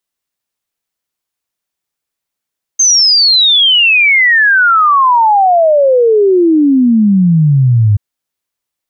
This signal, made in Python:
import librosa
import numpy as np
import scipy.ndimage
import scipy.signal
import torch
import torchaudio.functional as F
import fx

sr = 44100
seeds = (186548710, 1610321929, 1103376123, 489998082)

y = fx.ess(sr, length_s=5.18, from_hz=6400.0, to_hz=100.0, level_db=-5.0)